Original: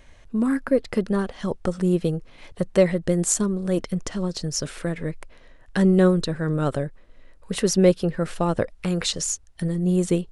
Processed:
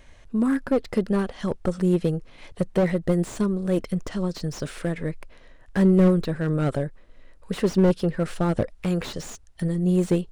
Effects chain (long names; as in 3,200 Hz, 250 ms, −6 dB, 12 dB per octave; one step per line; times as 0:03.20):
slew-rate limiting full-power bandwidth 66 Hz